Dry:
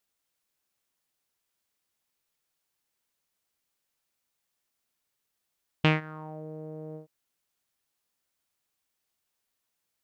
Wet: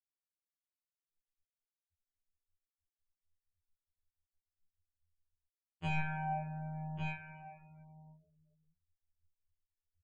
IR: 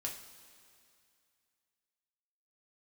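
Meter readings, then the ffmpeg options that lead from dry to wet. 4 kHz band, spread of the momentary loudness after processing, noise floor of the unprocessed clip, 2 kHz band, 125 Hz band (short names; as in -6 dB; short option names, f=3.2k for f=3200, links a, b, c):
-15.5 dB, 21 LU, -82 dBFS, -7.0 dB, -6.0 dB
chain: -filter_complex "[0:a]acrossover=split=1400[a][b];[b]asoftclip=type=tanh:threshold=-21dB[c];[a][c]amix=inputs=2:normalize=0,aecho=1:1:1151:0.0708,areverse,acompressor=threshold=-44dB:ratio=12,areverse[d];[1:a]atrim=start_sample=2205[e];[d][e]afir=irnorm=-1:irlink=0,asubboost=boost=6:cutoff=93,afftfilt=real='re*gte(hypot(re,im),0.000355)':imag='im*gte(hypot(re,im),0.000355)':win_size=1024:overlap=0.75,bandreject=f=550:w=12,afftfilt=real='re*2*eq(mod(b,4),0)':imag='im*2*eq(mod(b,4),0)':win_size=2048:overlap=0.75,volume=15dB"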